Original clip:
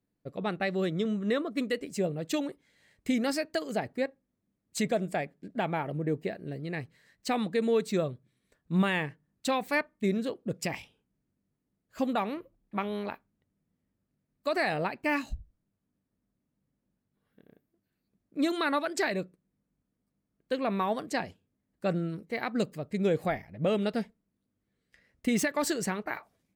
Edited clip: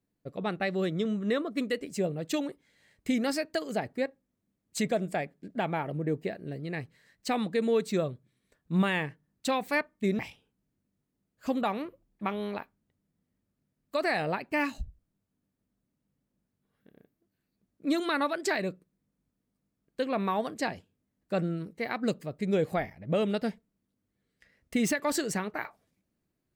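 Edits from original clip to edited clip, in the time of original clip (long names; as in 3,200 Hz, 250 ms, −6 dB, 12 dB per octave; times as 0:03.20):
0:10.19–0:10.71: remove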